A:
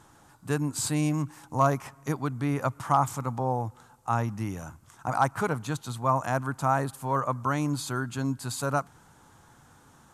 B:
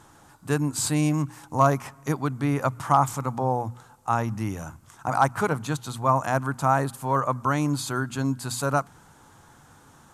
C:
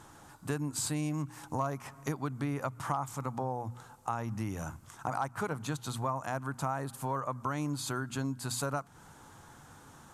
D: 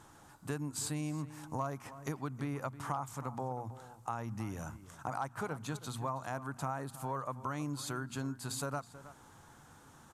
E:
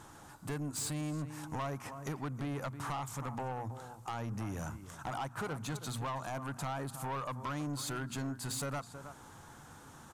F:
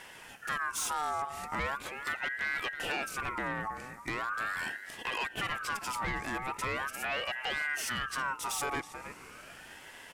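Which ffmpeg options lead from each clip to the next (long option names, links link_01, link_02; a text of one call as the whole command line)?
ffmpeg -i in.wav -af "bandreject=frequency=60:width_type=h:width=6,bandreject=frequency=120:width_type=h:width=6,bandreject=frequency=180:width_type=h:width=6,bandreject=frequency=240:width_type=h:width=6,volume=3.5dB" out.wav
ffmpeg -i in.wav -af "acompressor=threshold=-31dB:ratio=4,volume=-1dB" out.wav
ffmpeg -i in.wav -filter_complex "[0:a]asplit=2[link_01][link_02];[link_02]adelay=320.7,volume=-15dB,highshelf=frequency=4000:gain=-7.22[link_03];[link_01][link_03]amix=inputs=2:normalize=0,volume=-4dB" out.wav
ffmpeg -i in.wav -af "asoftclip=type=tanh:threshold=-37.5dB,volume=4.5dB" out.wav
ffmpeg -i in.wav -af "aeval=exprs='val(0)*sin(2*PI*1400*n/s+1400*0.3/0.4*sin(2*PI*0.4*n/s))':channel_layout=same,volume=6.5dB" out.wav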